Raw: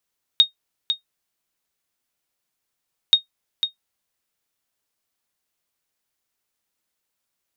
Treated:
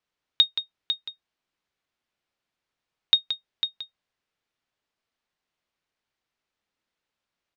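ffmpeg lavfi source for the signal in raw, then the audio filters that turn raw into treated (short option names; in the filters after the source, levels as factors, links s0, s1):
-f lavfi -i "aevalsrc='0.631*(sin(2*PI*3720*mod(t,2.73))*exp(-6.91*mod(t,2.73)/0.12)+0.376*sin(2*PI*3720*max(mod(t,2.73)-0.5,0))*exp(-6.91*max(mod(t,2.73)-0.5,0)/0.12))':d=5.46:s=44100"
-filter_complex "[0:a]lowpass=3900,asplit=2[s0][s1];[s1]aecho=0:1:175:0.299[s2];[s0][s2]amix=inputs=2:normalize=0"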